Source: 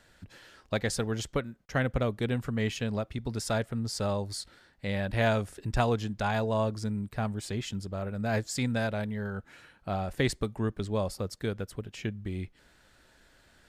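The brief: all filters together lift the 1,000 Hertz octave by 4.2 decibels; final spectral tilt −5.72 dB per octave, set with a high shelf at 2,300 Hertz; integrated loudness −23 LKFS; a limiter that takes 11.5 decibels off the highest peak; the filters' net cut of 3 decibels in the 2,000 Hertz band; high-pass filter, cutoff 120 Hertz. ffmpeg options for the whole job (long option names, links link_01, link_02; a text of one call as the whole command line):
ffmpeg -i in.wav -af "highpass=120,equalizer=frequency=1000:width_type=o:gain=8,equalizer=frequency=2000:width_type=o:gain=-5.5,highshelf=frequency=2300:gain=-4,volume=11.5dB,alimiter=limit=-9.5dB:level=0:latency=1" out.wav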